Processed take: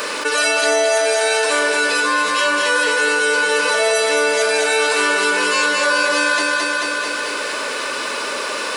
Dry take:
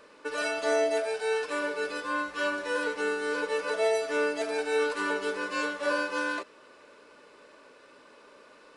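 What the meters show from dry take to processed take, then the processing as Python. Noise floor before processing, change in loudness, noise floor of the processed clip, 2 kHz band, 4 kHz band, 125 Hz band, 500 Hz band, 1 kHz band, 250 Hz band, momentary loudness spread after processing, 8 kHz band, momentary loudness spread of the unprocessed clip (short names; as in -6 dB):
-55 dBFS, +13.0 dB, -24 dBFS, +16.0 dB, +20.0 dB, n/a, +10.0 dB, +14.0 dB, +8.0 dB, 7 LU, +22.5 dB, 5 LU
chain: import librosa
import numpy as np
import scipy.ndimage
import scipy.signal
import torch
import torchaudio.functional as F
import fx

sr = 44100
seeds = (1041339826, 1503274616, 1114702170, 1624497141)

p1 = fx.tilt_eq(x, sr, slope=3.0)
p2 = p1 + fx.echo_feedback(p1, sr, ms=219, feedback_pct=53, wet_db=-5.0, dry=0)
p3 = fx.env_flatten(p2, sr, amount_pct=70)
y = p3 * librosa.db_to_amplitude(8.5)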